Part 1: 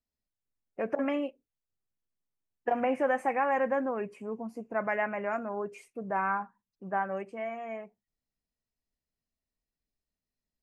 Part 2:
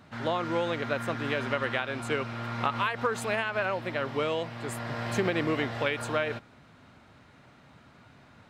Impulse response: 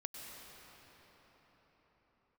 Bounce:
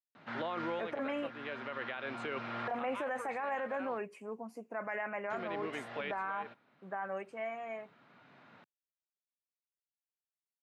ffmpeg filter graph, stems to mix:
-filter_complex "[0:a]agate=range=0.0224:threshold=0.00398:ratio=3:detection=peak,lowshelf=f=490:g=-4.5,volume=0.944,asplit=2[s0][s1];[1:a]lowpass=3300,adelay=150,volume=0.944,asplit=3[s2][s3][s4];[s2]atrim=end=3.98,asetpts=PTS-STARTPTS,afade=t=out:st=3.976:d=0.004:c=hsin[s5];[s3]atrim=start=3.98:end=5.3,asetpts=PTS-STARTPTS,volume=0[s6];[s4]atrim=start=5.3,asetpts=PTS-STARTPTS,afade=t=in:d=0.004:c=hsin[s7];[s5][s6][s7]concat=n=3:v=0:a=1[s8];[s1]apad=whole_len=381044[s9];[s8][s9]sidechaincompress=threshold=0.00891:ratio=6:attack=33:release=1380[s10];[s0][s10]amix=inputs=2:normalize=0,highpass=f=140:w=0.5412,highpass=f=140:w=1.3066,lowshelf=f=350:g=-6,alimiter=level_in=1.68:limit=0.0631:level=0:latency=1:release=13,volume=0.596"

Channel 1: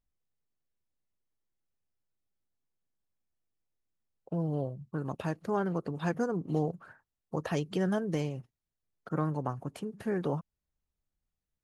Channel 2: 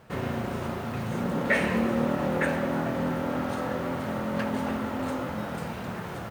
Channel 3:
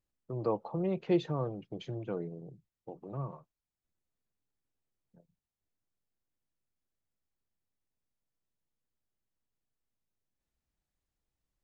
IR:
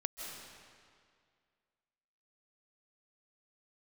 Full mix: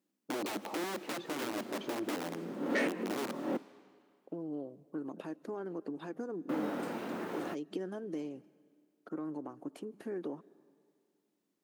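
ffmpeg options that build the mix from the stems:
-filter_complex "[0:a]alimiter=limit=0.075:level=0:latency=1:release=108,volume=0.422,asplit=2[s0][s1];[s1]volume=0.0668[s2];[1:a]adelay=1250,volume=0.531,asplit=3[s3][s4][s5];[s3]atrim=end=3.57,asetpts=PTS-STARTPTS,afade=t=out:st=3.566:d=0.004:c=hsin[s6];[s4]atrim=start=3.57:end=6.49,asetpts=PTS-STARTPTS,volume=0[s7];[s5]atrim=start=6.49,asetpts=PTS-STARTPTS,afade=t=in:d=0.004:c=hsin[s8];[s6][s7][s8]concat=n=3:v=0:a=1[s9];[2:a]equalizer=f=200:t=o:w=0.48:g=14,acompressor=threshold=0.0398:ratio=6,aeval=exprs='(mod(37.6*val(0)+1,2)-1)/37.6':c=same,volume=1.33,asplit=3[s10][s11][s12];[s11]volume=0.158[s13];[s12]apad=whole_len=333002[s14];[s9][s14]sidechaincompress=threshold=0.00158:ratio=3:attack=11:release=159[s15];[s0][s10]amix=inputs=2:normalize=0,acompressor=threshold=0.01:ratio=6,volume=1[s16];[3:a]atrim=start_sample=2205[s17];[s2][s13]amix=inputs=2:normalize=0[s18];[s18][s17]afir=irnorm=-1:irlink=0[s19];[s15][s16][s19]amix=inputs=3:normalize=0,asoftclip=type=tanh:threshold=0.0447,highpass=f=300:t=q:w=3.6"

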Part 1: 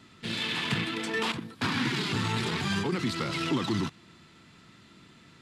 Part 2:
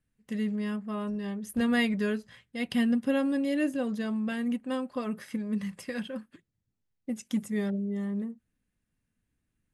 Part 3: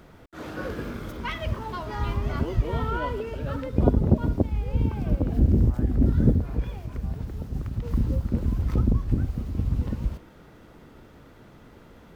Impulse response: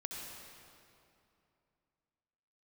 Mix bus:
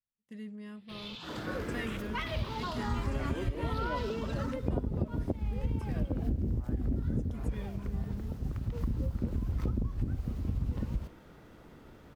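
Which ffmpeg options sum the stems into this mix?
-filter_complex "[0:a]asplit=2[s0][s1];[s1]afreqshift=0.7[s2];[s0][s2]amix=inputs=2:normalize=1,adelay=650,volume=0.266[s3];[1:a]agate=range=0.282:threshold=0.00398:ratio=16:detection=peak,volume=0.224,asplit=3[s4][s5][s6];[s4]atrim=end=1.15,asetpts=PTS-STARTPTS,afade=t=out:st=1.146:d=0.004:c=hsin[s7];[s5]atrim=start=1.15:end=1.74,asetpts=PTS-STARTPTS,volume=0[s8];[s6]atrim=start=1.74,asetpts=PTS-STARTPTS,afade=t=in:d=0.004:c=hsin[s9];[s7][s8][s9]concat=n=3:v=0:a=1[s10];[2:a]adelay=900,volume=0.631[s11];[s3][s10][s11]amix=inputs=3:normalize=0,acompressor=threshold=0.0447:ratio=12"

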